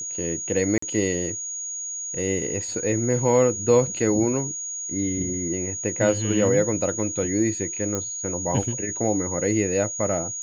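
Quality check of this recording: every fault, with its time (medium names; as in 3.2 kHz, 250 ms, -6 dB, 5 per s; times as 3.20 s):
whine 6.7 kHz -29 dBFS
0.78–0.82 s: dropout 44 ms
7.95 s: pop -13 dBFS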